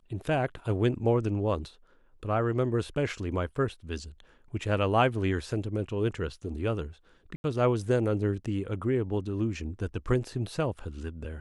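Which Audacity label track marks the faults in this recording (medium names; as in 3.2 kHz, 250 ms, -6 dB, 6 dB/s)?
7.360000	7.440000	dropout 81 ms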